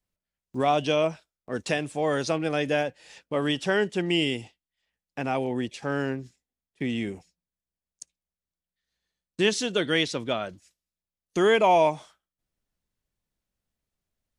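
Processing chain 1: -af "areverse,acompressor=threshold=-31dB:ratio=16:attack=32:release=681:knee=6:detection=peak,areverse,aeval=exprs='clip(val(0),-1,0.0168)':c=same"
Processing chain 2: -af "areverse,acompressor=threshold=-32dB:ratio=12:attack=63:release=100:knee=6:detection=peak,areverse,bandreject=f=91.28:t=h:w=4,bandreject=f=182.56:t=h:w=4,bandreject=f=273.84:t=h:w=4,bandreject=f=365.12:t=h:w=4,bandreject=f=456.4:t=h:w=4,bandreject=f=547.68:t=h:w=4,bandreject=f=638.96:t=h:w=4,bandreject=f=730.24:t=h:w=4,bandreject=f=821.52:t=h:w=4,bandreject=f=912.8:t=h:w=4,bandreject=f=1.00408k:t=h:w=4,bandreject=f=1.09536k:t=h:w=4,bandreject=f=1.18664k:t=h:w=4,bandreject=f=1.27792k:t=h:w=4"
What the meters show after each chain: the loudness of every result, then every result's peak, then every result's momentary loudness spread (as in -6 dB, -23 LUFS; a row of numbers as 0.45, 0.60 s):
-38.5, -33.0 LUFS; -20.0, -15.5 dBFS; 13, 13 LU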